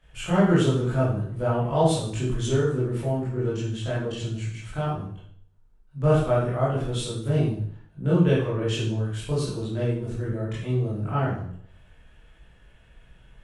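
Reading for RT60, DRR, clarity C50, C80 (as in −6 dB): 0.60 s, −10.0 dB, 1.5 dB, 6.0 dB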